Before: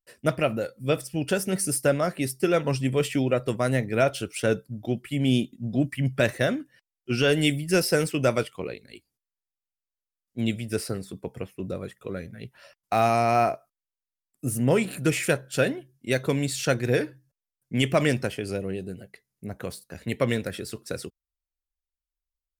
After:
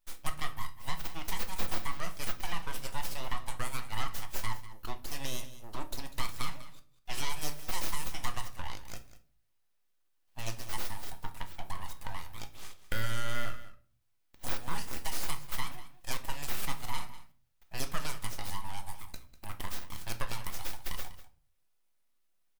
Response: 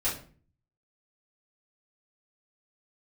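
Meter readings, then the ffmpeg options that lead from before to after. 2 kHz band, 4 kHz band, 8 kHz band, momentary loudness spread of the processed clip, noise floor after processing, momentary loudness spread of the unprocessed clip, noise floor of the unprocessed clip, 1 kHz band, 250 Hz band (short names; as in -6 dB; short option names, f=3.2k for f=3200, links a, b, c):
-11.0 dB, -7.0 dB, -7.5 dB, 11 LU, -72 dBFS, 14 LU, under -85 dBFS, -9.5 dB, -22.0 dB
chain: -filter_complex "[0:a]highpass=f=420:w=0.5412,highpass=f=420:w=1.3066,equalizer=f=15k:t=o:w=1.3:g=13,acompressor=threshold=-40dB:ratio=3,aeval=exprs='abs(val(0))':c=same,aecho=1:1:196:0.168,asplit=2[a][b];[1:a]atrim=start_sample=2205[c];[b][c]afir=irnorm=-1:irlink=0,volume=-13dB[d];[a][d]amix=inputs=2:normalize=0,volume=2.5dB"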